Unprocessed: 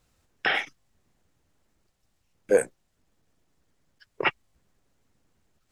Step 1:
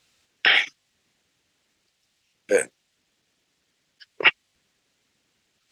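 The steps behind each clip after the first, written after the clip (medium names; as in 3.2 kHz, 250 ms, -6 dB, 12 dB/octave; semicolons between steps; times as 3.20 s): frequency weighting D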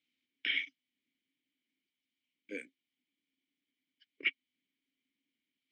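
vowel filter i; trim -5 dB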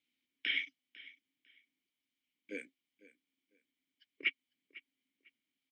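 feedback delay 500 ms, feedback 22%, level -19.5 dB; trim -1 dB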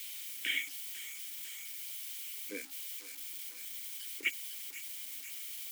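zero-crossing glitches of -35 dBFS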